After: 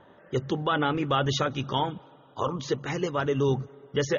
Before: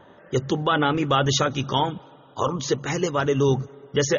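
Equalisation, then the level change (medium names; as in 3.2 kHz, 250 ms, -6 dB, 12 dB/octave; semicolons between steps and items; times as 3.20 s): low-pass 4.7 kHz 12 dB/octave; -4.5 dB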